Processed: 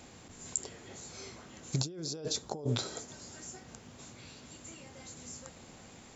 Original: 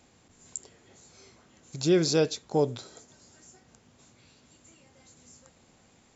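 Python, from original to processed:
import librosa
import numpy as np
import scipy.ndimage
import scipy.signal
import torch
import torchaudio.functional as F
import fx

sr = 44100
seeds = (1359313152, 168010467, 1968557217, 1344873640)

y = fx.over_compress(x, sr, threshold_db=-36.0, ratio=-1.0)
y = fx.peak_eq(y, sr, hz=2300.0, db=-8.5, octaves=1.1, at=(1.78, 2.69))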